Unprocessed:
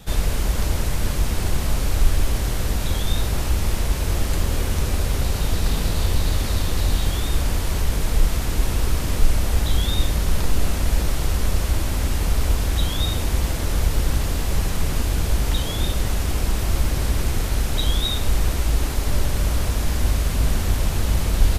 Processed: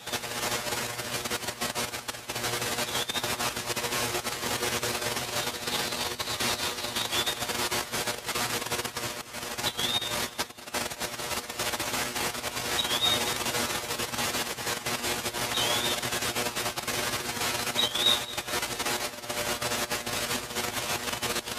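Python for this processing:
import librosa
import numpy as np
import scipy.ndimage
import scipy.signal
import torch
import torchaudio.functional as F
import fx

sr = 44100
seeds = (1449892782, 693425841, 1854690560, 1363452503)

p1 = fx.comb_fb(x, sr, f0_hz=120.0, decay_s=0.17, harmonics='all', damping=0.0, mix_pct=90)
p2 = fx.over_compress(p1, sr, threshold_db=-30.0, ratio=-1.0)
p3 = fx.weighting(p2, sr, curve='A')
p4 = p3 + fx.echo_feedback(p3, sr, ms=221, feedback_pct=47, wet_db=-17.5, dry=0)
y = p4 * librosa.db_to_amplitude(8.0)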